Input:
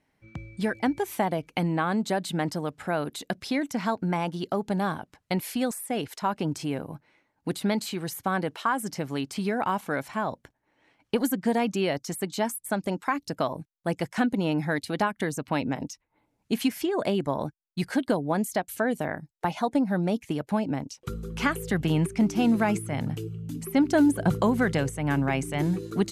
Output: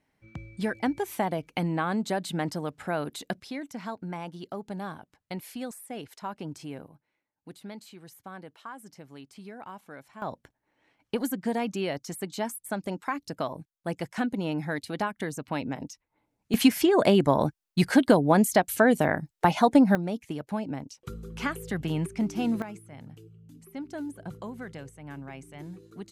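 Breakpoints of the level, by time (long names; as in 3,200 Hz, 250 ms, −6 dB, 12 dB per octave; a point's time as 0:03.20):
−2 dB
from 0:03.40 −9 dB
from 0:06.88 −16 dB
from 0:10.22 −4 dB
from 0:16.54 +6 dB
from 0:19.95 −5 dB
from 0:22.62 −16 dB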